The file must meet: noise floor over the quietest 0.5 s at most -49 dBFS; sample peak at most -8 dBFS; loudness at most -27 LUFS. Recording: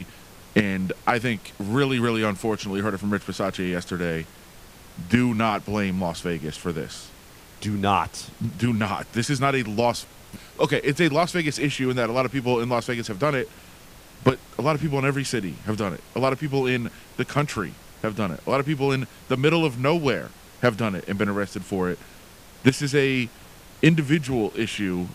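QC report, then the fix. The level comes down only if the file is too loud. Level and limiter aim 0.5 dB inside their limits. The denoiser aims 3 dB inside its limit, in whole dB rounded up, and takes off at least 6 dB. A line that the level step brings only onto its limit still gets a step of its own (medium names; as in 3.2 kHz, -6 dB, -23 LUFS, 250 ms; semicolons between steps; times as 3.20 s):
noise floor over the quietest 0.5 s -47 dBFS: fail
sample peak -5.0 dBFS: fail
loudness -24.5 LUFS: fail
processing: trim -3 dB; peak limiter -8.5 dBFS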